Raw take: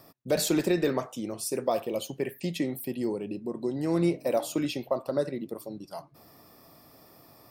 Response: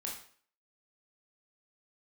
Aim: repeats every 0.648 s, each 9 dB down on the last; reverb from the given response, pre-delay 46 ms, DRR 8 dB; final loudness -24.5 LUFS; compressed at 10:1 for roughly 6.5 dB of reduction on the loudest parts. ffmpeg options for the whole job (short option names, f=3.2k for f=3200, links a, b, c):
-filter_complex "[0:a]acompressor=threshold=-27dB:ratio=10,aecho=1:1:648|1296|1944|2592:0.355|0.124|0.0435|0.0152,asplit=2[a][b];[1:a]atrim=start_sample=2205,adelay=46[c];[b][c]afir=irnorm=-1:irlink=0,volume=-8dB[d];[a][d]amix=inputs=2:normalize=0,volume=8dB"